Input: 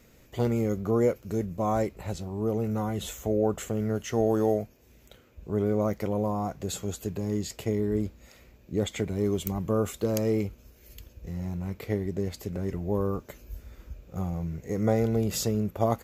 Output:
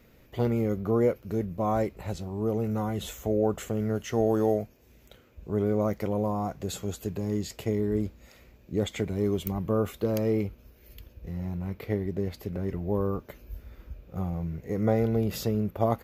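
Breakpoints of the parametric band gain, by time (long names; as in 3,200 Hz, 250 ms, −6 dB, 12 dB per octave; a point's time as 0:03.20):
parametric band 7,500 Hz 0.94 octaves
0:01.62 −10.5 dB
0:02.07 −3.5 dB
0:09.09 −3.5 dB
0:09.69 −11.5 dB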